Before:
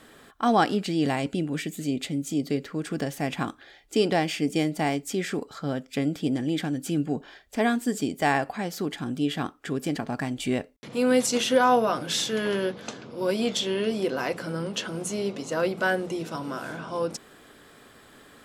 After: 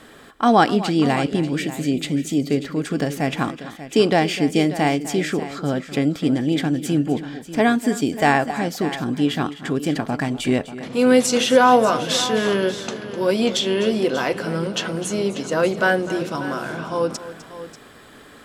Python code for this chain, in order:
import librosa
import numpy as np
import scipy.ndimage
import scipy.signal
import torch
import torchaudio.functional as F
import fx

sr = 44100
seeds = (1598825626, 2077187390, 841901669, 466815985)

y = fx.high_shelf(x, sr, hz=7600.0, db=-4.5)
y = fx.echo_multitap(y, sr, ms=(253, 589), db=(-15.0, -14.0))
y = F.gain(torch.from_numpy(y), 6.5).numpy()